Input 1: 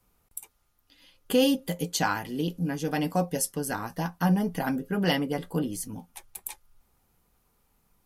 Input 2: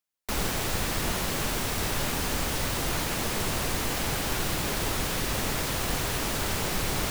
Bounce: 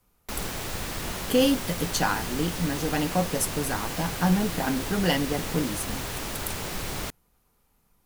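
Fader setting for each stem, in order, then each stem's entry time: +1.0 dB, -4.0 dB; 0.00 s, 0.00 s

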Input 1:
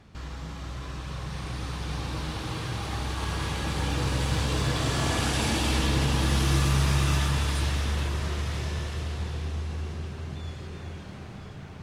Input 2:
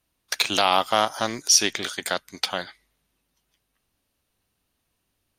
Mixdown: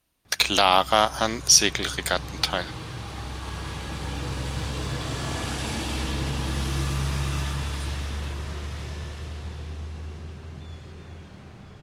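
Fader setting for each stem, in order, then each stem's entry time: -3.5 dB, +1.5 dB; 0.25 s, 0.00 s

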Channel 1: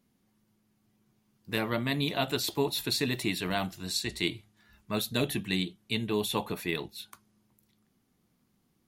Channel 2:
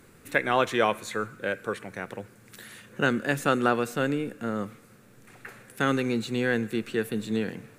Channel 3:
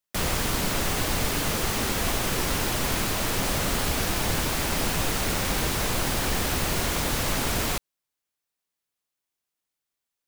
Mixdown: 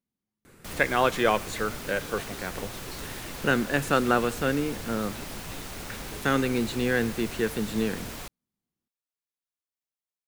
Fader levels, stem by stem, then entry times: -17.5 dB, +0.5 dB, -12.5 dB; 0.00 s, 0.45 s, 0.50 s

